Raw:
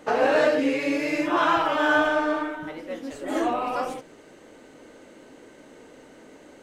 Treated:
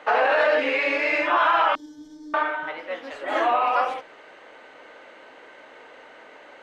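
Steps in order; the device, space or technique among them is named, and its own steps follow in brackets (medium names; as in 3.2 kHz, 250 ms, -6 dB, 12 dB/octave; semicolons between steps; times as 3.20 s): DJ mixer with the lows and highs turned down (three-band isolator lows -22 dB, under 600 Hz, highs -23 dB, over 3.7 kHz; peak limiter -20 dBFS, peak gain reduction 8.5 dB); 1.75–2.34 s: elliptic band-stop 300–5600 Hz, stop band 40 dB; trim +9 dB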